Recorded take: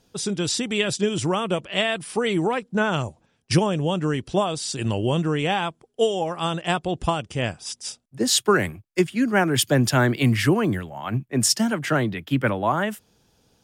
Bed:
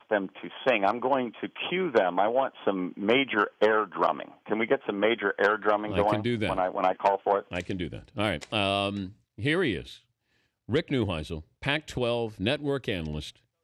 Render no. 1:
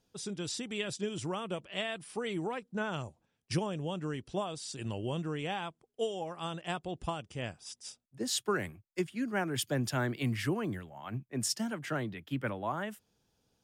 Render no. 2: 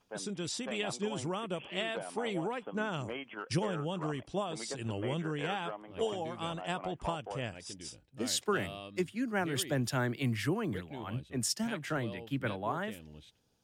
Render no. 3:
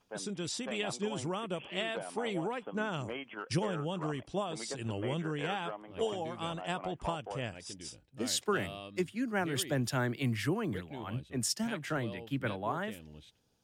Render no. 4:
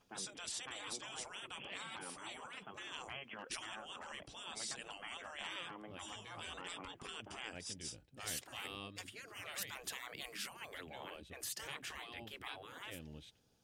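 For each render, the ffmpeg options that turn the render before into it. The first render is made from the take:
ffmpeg -i in.wav -af "volume=-13dB" out.wav
ffmpeg -i in.wav -i bed.wav -filter_complex "[1:a]volume=-18dB[link_01];[0:a][link_01]amix=inputs=2:normalize=0" out.wav
ffmpeg -i in.wav -af anull out.wav
ffmpeg -i in.wav -af "bandreject=frequency=950:width=21,afftfilt=real='re*lt(hypot(re,im),0.0251)':imag='im*lt(hypot(re,im),0.0251)':win_size=1024:overlap=0.75" out.wav

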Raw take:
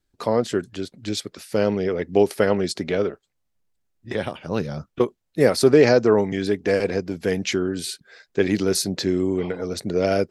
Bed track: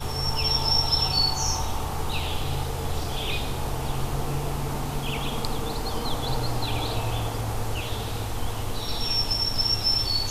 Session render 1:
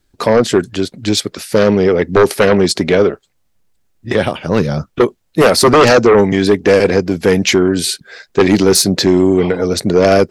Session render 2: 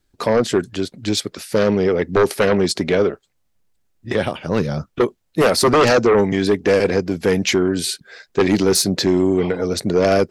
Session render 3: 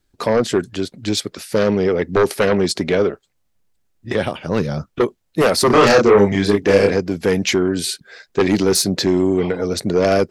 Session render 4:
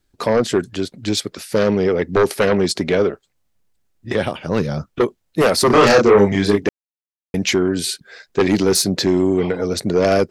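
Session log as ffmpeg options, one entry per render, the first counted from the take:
ffmpeg -i in.wav -af "aeval=exprs='0.668*sin(PI/2*2.82*val(0)/0.668)':channel_layout=same" out.wav
ffmpeg -i in.wav -af "volume=-5.5dB" out.wav
ffmpeg -i in.wav -filter_complex "[0:a]asettb=1/sr,asplit=3[link_01][link_02][link_03];[link_01]atrim=end=5.674[link_04];[link_02]atrim=start=5.67:end=6.93,asetpts=PTS-STARTPTS,afade=type=in:duration=0.004:curve=qsin,afade=type=out:start_time=1.256:duration=0.004:curve=qsin,asplit=2[link_05][link_06];[link_06]adelay=30,volume=-2dB[link_07];[link_05][link_07]amix=inputs=2:normalize=0,atrim=end_sample=55566[link_08];[link_03]atrim=start=6.926[link_09];[link_04][link_08]acrossfade=duration=0.004:curve1=hsin:curve2=qsin[link_10];[link_10][link_09]acrossfade=duration=0.004:curve1=qsin:curve2=hsin" out.wav
ffmpeg -i in.wav -filter_complex "[0:a]asplit=3[link_01][link_02][link_03];[link_01]atrim=end=6.69,asetpts=PTS-STARTPTS,afade=type=out:start_time=6.686:duration=0.004:curve=hsin[link_04];[link_02]atrim=start=6.69:end=7.34,asetpts=PTS-STARTPTS,volume=0[link_05];[link_03]atrim=start=7.34,asetpts=PTS-STARTPTS,afade=type=in:duration=0.004:curve=hsin[link_06];[link_04][link_05][link_06]concat=n=3:v=0:a=1" out.wav

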